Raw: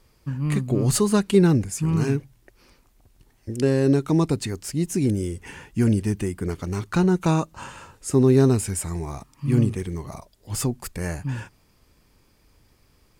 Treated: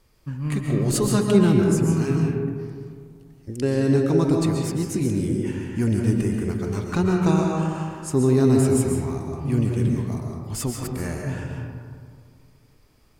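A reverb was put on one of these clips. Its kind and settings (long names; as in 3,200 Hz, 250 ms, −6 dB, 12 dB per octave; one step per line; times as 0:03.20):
comb and all-pass reverb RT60 2 s, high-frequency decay 0.35×, pre-delay 95 ms, DRR 0 dB
level −2.5 dB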